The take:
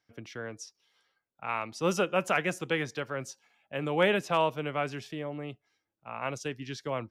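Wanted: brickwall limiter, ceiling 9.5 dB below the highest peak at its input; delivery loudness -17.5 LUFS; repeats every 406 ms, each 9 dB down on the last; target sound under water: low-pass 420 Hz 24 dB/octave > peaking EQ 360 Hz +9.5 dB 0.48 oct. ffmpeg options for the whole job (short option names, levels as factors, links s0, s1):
-af "alimiter=limit=0.0668:level=0:latency=1,lowpass=f=420:w=0.5412,lowpass=f=420:w=1.3066,equalizer=f=360:t=o:w=0.48:g=9.5,aecho=1:1:406|812|1218|1624:0.355|0.124|0.0435|0.0152,volume=8.91"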